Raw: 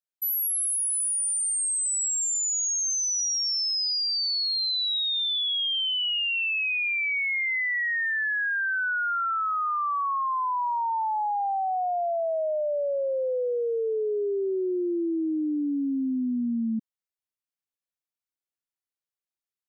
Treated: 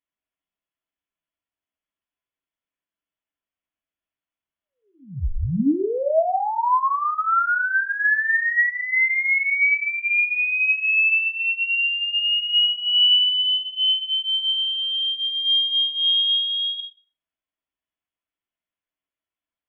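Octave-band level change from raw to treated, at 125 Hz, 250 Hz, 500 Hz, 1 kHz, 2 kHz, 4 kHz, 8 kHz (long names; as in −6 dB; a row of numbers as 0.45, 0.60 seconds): can't be measured, −2.0 dB, −2.0 dB, +2.0 dB, +7.5 dB, +8.5 dB, below −40 dB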